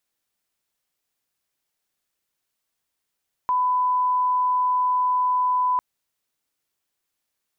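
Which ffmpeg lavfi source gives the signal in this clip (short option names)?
-f lavfi -i "sine=f=1000:d=2.3:r=44100,volume=0.06dB"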